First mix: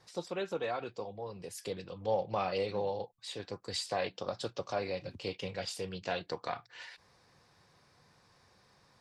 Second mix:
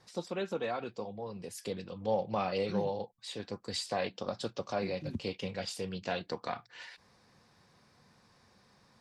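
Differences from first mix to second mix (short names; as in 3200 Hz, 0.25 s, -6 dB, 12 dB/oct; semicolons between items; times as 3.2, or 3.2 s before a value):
second voice +10.5 dB; master: add bell 220 Hz +8 dB 0.48 oct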